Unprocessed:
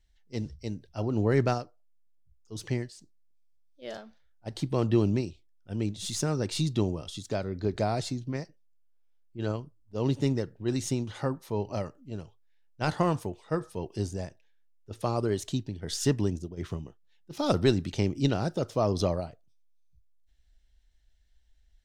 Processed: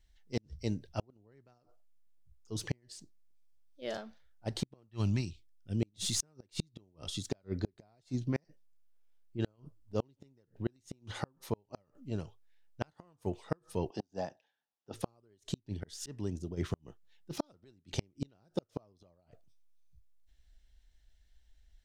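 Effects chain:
0:04.88–0:05.81: parametric band 290 Hz → 1,100 Hz −15 dB 1.7 octaves
0:15.80–0:16.47: volume swells 603 ms
gate with flip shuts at −20 dBFS, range −39 dB
0:13.90–0:14.94: loudspeaker in its box 220–5,600 Hz, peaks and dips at 390 Hz −6 dB, 780 Hz +9 dB, 2,200 Hz −9 dB, 4,200 Hz −4 dB
level +1 dB

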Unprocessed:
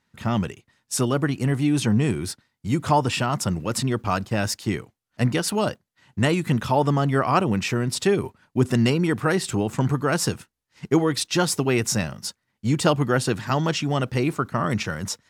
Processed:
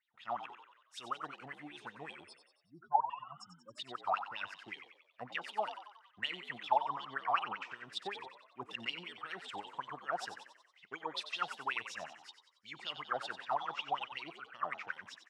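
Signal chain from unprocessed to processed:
0:02.23–0:03.78: expanding power law on the bin magnitudes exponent 3.9
LFO wah 5.3 Hz 700–3,600 Hz, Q 11
echo with shifted repeats 92 ms, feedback 53%, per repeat +64 Hz, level −10.5 dB

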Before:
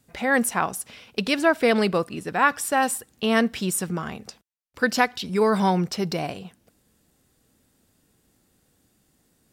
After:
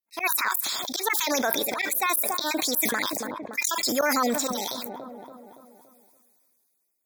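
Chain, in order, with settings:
time-frequency cells dropped at random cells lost 25%
RIAA equalisation recording
noise gate −50 dBFS, range −36 dB
low-shelf EQ 220 Hz −4 dB
volume swells 212 ms
brickwall limiter −18 dBFS, peak gain reduction 10.5 dB
delay with a low-pass on its return 383 ms, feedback 35%, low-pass 640 Hz, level −17.5 dB
wrong playback speed 33 rpm record played at 45 rpm
Butterworth band-reject 2,900 Hz, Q 4.1
level that may fall only so fast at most 20 dB per second
level +4 dB

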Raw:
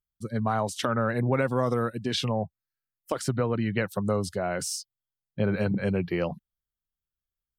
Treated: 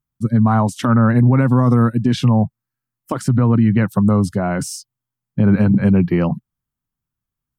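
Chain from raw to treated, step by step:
octave-band graphic EQ 125/250/500/1,000/4,000 Hz +12/+11/−4/+7/−5 dB
brickwall limiter −10.5 dBFS, peak gain reduction 6.5 dB
level +4.5 dB

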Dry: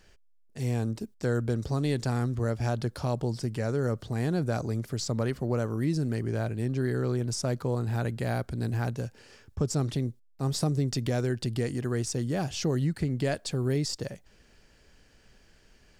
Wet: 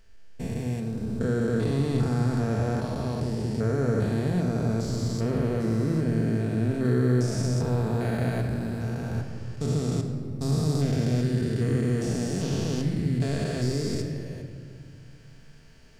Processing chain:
spectrum averaged block by block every 400 ms
rectangular room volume 3,200 cubic metres, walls mixed, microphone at 1.6 metres
0:06.85–0:07.47: one half of a high-frequency compander encoder only
level +3.5 dB

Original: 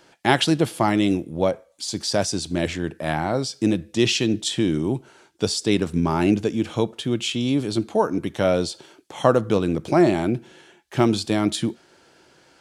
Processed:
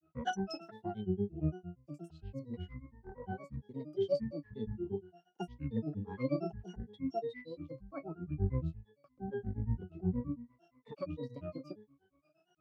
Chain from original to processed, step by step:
resonances in every octave F#, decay 0.45 s
granular cloud 140 ms, grains 8.6 per second, pitch spread up and down by 12 semitones
level +1.5 dB

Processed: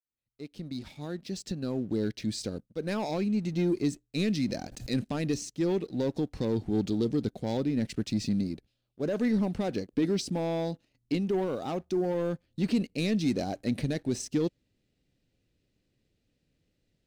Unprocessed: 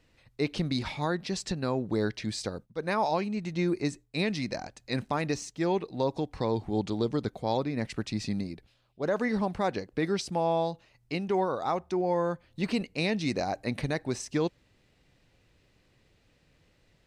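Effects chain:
fade in at the beginning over 2.91 s
0:09.97–0:11.17: parametric band 270 Hz +9 dB 0.28 octaves
leveller curve on the samples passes 2
graphic EQ with 10 bands 250 Hz +5 dB, 1,000 Hz −10 dB, 2,000 Hz −4 dB
0:04.40–0:04.91: background raised ahead of every attack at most 62 dB per second
level −6 dB

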